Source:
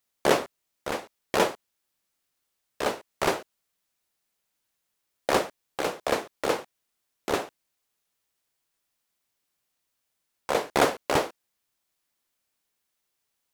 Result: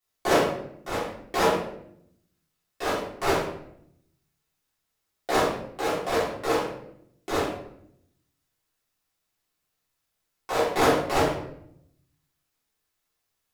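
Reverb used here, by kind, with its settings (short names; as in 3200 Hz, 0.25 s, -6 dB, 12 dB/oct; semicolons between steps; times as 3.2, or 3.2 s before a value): shoebox room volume 150 m³, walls mixed, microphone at 3.4 m; gain -10 dB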